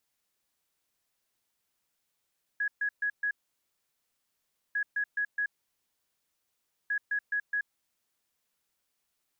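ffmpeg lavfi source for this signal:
-f lavfi -i "aevalsrc='0.0473*sin(2*PI*1670*t)*clip(min(mod(mod(t,2.15),0.21),0.08-mod(mod(t,2.15),0.21))/0.005,0,1)*lt(mod(t,2.15),0.84)':d=6.45:s=44100"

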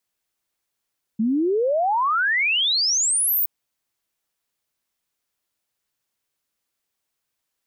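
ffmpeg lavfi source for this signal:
-f lavfi -i "aevalsrc='0.133*clip(min(t,2.27-t)/0.01,0,1)*sin(2*PI*210*2.27/log(16000/210)*(exp(log(16000/210)*t/2.27)-1))':d=2.27:s=44100"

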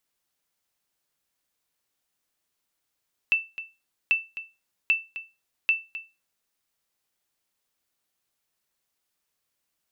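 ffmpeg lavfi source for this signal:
-f lavfi -i "aevalsrc='0.211*(sin(2*PI*2660*mod(t,0.79))*exp(-6.91*mod(t,0.79)/0.26)+0.2*sin(2*PI*2660*max(mod(t,0.79)-0.26,0))*exp(-6.91*max(mod(t,0.79)-0.26,0)/0.26))':d=3.16:s=44100"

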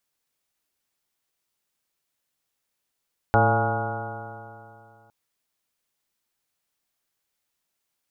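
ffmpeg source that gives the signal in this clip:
-f lavfi -i "aevalsrc='0.1*pow(10,-3*t/2.61)*sin(2*PI*109.19*t)+0.0422*pow(10,-3*t/2.61)*sin(2*PI*219.52*t)+0.0355*pow(10,-3*t/2.61)*sin(2*PI*332.11*t)+0.0562*pow(10,-3*t/2.61)*sin(2*PI*448.04*t)+0.0668*pow(10,-3*t/2.61)*sin(2*PI*568.34*t)+0.0708*pow(10,-3*t/2.61)*sin(2*PI*693.98*t)+0.119*pow(10,-3*t/2.61)*sin(2*PI*825.84*t)+0.0299*pow(10,-3*t/2.61)*sin(2*PI*964.73*t)+0.0266*pow(10,-3*t/2.61)*sin(2*PI*1111.39*t)+0.0251*pow(10,-3*t/2.61)*sin(2*PI*1266.47*t)+0.0668*pow(10,-3*t/2.61)*sin(2*PI*1430.53*t)':d=1.76:s=44100"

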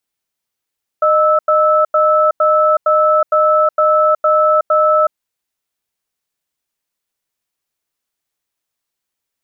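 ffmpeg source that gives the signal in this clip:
-f lavfi -i "aevalsrc='0.266*(sin(2*PI*615*t)+sin(2*PI*1310*t))*clip(min(mod(t,0.46),0.37-mod(t,0.46))/0.005,0,1)':d=4.11:s=44100"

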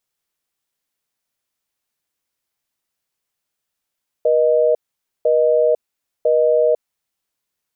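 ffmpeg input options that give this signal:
-f lavfi -i "aevalsrc='0.188*(sin(2*PI*480*t)+sin(2*PI*620*t))*clip(min(mod(t,1),0.5-mod(t,1))/0.005,0,1)':d=2.66:s=44100"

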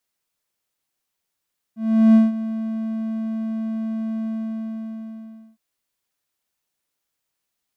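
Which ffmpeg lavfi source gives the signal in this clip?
-f lavfi -i "aevalsrc='0.501*(1-4*abs(mod(222*t+0.25,1)-0.5))':d=3.81:s=44100,afade=t=in:d=0.383,afade=t=out:st=0.383:d=0.174:silence=0.178,afade=t=out:st=2.49:d=1.32"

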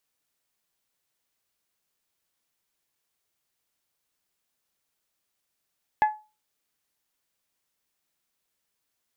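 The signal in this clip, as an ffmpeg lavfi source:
-f lavfi -i "aevalsrc='0.2*pow(10,-3*t/0.3)*sin(2*PI*854*t)+0.0668*pow(10,-3*t/0.185)*sin(2*PI*1708*t)+0.0224*pow(10,-3*t/0.163)*sin(2*PI*2049.6*t)+0.0075*pow(10,-3*t/0.139)*sin(2*PI*2562*t)+0.00251*pow(10,-3*t/0.114)*sin(2*PI*3416*t)':d=0.89:s=44100"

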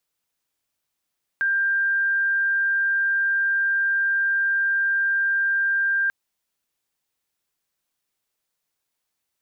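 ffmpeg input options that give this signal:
-f lavfi -i "aevalsrc='0.119*sin(2*PI*1590*t)':d=4.69:s=44100"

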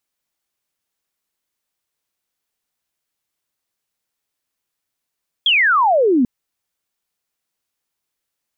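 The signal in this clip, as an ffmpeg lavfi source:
-f lavfi -i "aevalsrc='0.282*clip(t/0.002,0,1)*clip((0.79-t)/0.002,0,1)*sin(2*PI*3400*0.79/log(230/3400)*(exp(log(230/3400)*t/0.79)-1))':d=0.79:s=44100"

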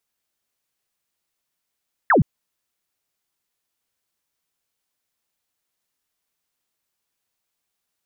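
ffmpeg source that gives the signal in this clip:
-f lavfi -i "aevalsrc='0.266*clip(t/0.002,0,1)*clip((0.12-t)/0.002,0,1)*sin(2*PI*2000*0.12/log(110/2000)*(exp(log(110/2000)*t/0.12)-1))':d=0.12:s=44100"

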